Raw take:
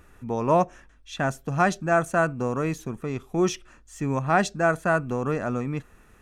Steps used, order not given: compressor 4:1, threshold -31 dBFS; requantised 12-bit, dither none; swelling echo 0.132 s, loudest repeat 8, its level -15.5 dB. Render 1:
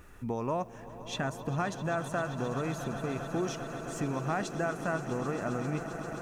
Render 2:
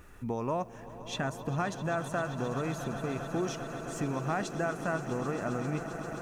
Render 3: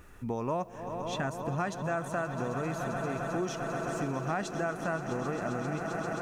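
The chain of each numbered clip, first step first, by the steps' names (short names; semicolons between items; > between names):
compressor > swelling echo > requantised; compressor > requantised > swelling echo; swelling echo > compressor > requantised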